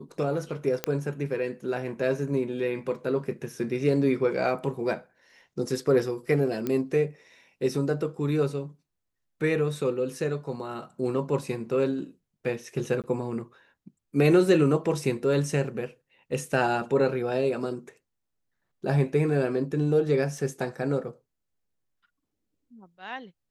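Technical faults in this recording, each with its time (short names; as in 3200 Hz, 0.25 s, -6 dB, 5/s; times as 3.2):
0.84 pop -10 dBFS
6.67 pop -16 dBFS
13.02–13.04 gap 18 ms
20.38 gap 2.3 ms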